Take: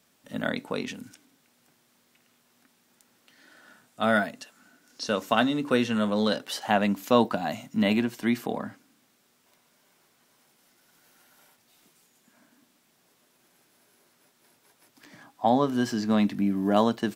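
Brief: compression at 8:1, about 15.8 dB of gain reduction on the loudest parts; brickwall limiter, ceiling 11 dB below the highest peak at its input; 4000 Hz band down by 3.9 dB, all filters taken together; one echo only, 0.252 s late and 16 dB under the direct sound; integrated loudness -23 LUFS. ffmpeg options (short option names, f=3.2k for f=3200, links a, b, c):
-af "equalizer=f=4k:t=o:g=-5,acompressor=threshold=-33dB:ratio=8,alimiter=level_in=5.5dB:limit=-24dB:level=0:latency=1,volume=-5.5dB,aecho=1:1:252:0.158,volume=18dB"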